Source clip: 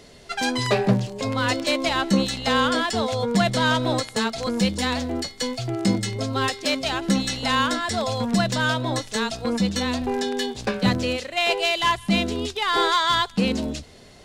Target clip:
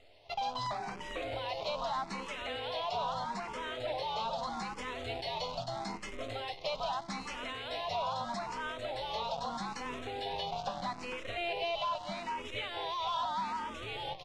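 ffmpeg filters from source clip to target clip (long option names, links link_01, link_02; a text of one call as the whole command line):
ffmpeg -i in.wav -filter_complex "[0:a]asplit=6[link_01][link_02][link_03][link_04][link_05][link_06];[link_02]adelay=447,afreqshift=-84,volume=-5dB[link_07];[link_03]adelay=894,afreqshift=-168,volume=-12.7dB[link_08];[link_04]adelay=1341,afreqshift=-252,volume=-20.5dB[link_09];[link_05]adelay=1788,afreqshift=-336,volume=-28.2dB[link_10];[link_06]adelay=2235,afreqshift=-420,volume=-36dB[link_11];[link_01][link_07][link_08][link_09][link_10][link_11]amix=inputs=6:normalize=0,acrossover=split=360[link_12][link_13];[link_12]alimiter=limit=-19dB:level=0:latency=1:release=321[link_14];[link_14][link_13]amix=inputs=2:normalize=0,lowshelf=frequency=500:width_type=q:width=1.5:gain=-13.5,acrusher=bits=6:dc=4:mix=0:aa=0.000001,equalizer=frequency=1600:width_type=o:width=0.8:gain=-12.5,asoftclip=type=hard:threshold=-23.5dB,lowpass=2800,acompressor=threshold=-31dB:ratio=6,asplit=2[link_15][link_16];[link_16]afreqshift=0.79[link_17];[link_15][link_17]amix=inputs=2:normalize=1" out.wav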